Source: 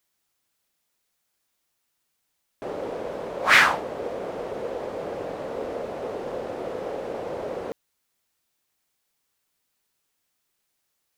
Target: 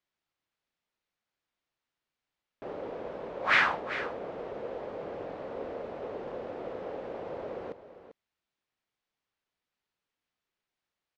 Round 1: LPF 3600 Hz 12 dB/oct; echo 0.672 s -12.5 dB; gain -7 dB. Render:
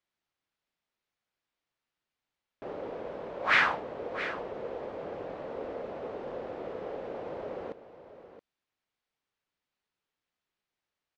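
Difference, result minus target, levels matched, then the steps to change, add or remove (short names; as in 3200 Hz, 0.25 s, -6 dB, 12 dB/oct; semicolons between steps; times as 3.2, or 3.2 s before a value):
echo 0.278 s late
change: echo 0.394 s -12.5 dB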